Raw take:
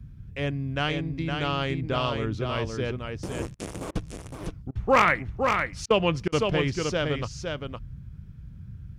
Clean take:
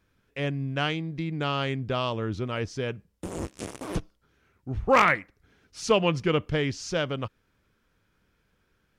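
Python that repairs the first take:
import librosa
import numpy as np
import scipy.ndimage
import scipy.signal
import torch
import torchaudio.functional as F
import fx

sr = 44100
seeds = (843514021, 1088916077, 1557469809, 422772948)

y = fx.fix_interpolate(x, sr, at_s=(3.55, 3.91, 4.71, 5.86, 6.28), length_ms=42.0)
y = fx.noise_reduce(y, sr, print_start_s=8.09, print_end_s=8.59, reduce_db=27.0)
y = fx.fix_echo_inverse(y, sr, delay_ms=512, level_db=-5.0)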